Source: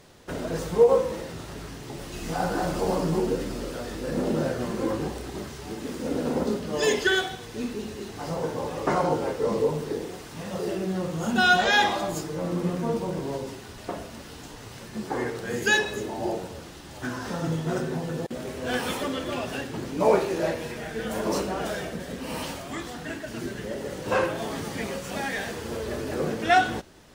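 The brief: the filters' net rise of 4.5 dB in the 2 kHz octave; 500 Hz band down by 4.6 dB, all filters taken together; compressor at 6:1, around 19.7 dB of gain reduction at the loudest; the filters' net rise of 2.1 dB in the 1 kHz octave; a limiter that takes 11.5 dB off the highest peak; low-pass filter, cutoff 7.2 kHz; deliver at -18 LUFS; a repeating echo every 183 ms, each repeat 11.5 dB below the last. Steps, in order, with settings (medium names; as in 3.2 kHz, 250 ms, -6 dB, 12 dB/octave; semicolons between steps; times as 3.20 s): low-pass 7.2 kHz; peaking EQ 500 Hz -7 dB; peaking EQ 1 kHz +5 dB; peaking EQ 2 kHz +4.5 dB; compression 6:1, threshold -35 dBFS; peak limiter -33.5 dBFS; feedback delay 183 ms, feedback 27%, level -11.5 dB; trim +23.5 dB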